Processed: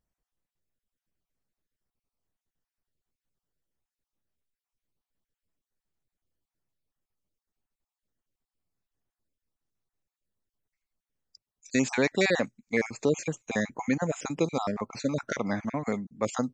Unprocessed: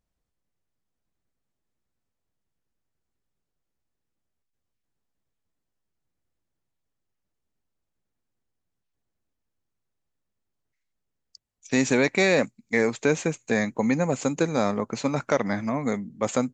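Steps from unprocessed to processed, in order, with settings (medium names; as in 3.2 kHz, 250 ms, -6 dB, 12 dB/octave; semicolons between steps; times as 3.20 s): random holes in the spectrogram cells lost 34%; trim -2.5 dB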